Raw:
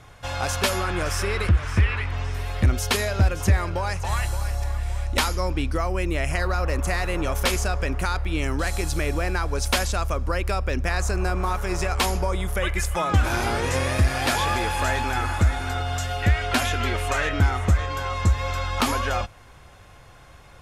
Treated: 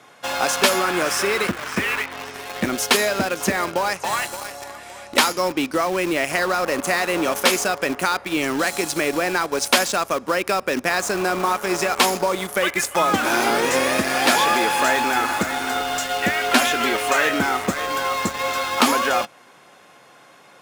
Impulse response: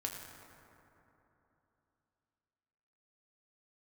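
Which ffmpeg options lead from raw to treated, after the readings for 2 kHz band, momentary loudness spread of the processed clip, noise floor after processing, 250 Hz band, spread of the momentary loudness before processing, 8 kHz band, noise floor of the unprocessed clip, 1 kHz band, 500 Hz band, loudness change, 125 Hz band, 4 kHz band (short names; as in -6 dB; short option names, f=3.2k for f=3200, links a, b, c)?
+6.5 dB, 6 LU, -49 dBFS, +5.0 dB, 5 LU, +7.0 dB, -47 dBFS, +6.5 dB, +6.5 dB, +4.0 dB, -14.0 dB, +6.5 dB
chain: -filter_complex "[0:a]highpass=f=200:w=0.5412,highpass=f=200:w=1.3066,asplit=2[a][b];[b]acrusher=bits=4:mix=0:aa=0.000001,volume=-5dB[c];[a][c]amix=inputs=2:normalize=0,volume=2.5dB"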